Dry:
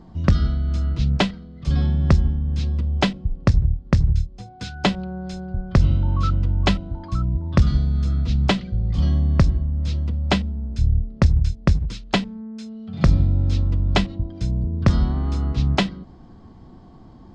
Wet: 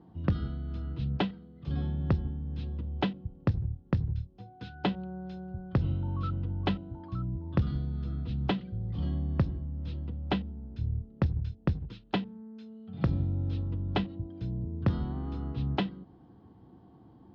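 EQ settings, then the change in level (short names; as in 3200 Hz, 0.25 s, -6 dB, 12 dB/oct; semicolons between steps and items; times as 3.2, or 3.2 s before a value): speaker cabinet 110–3100 Hz, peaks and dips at 160 Hz -5 dB, 230 Hz -8 dB, 390 Hz -4 dB, 610 Hz -9 dB, 1100 Hz -4 dB, 2200 Hz -5 dB; low shelf 190 Hz -6.5 dB; bell 1900 Hz -11 dB 2.5 oct; 0.0 dB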